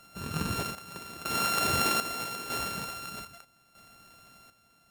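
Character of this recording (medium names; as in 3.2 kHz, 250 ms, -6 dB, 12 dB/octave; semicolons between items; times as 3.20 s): a buzz of ramps at a fixed pitch in blocks of 32 samples; chopped level 0.8 Hz, depth 65%, duty 60%; MP3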